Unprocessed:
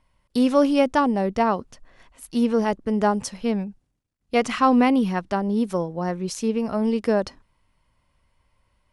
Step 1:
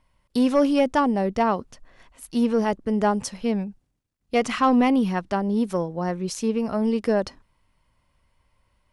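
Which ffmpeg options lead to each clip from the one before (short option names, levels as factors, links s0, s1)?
-af "asoftclip=type=tanh:threshold=0.355"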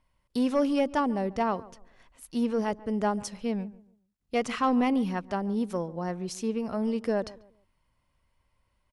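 -filter_complex "[0:a]asplit=2[s0][s1];[s1]adelay=141,lowpass=f=1300:p=1,volume=0.119,asplit=2[s2][s3];[s3]adelay=141,lowpass=f=1300:p=1,volume=0.31,asplit=2[s4][s5];[s5]adelay=141,lowpass=f=1300:p=1,volume=0.31[s6];[s0][s2][s4][s6]amix=inputs=4:normalize=0,volume=0.501"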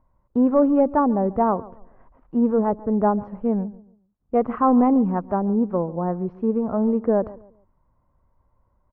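-af "lowpass=f=1200:w=0.5412,lowpass=f=1200:w=1.3066,volume=2.51"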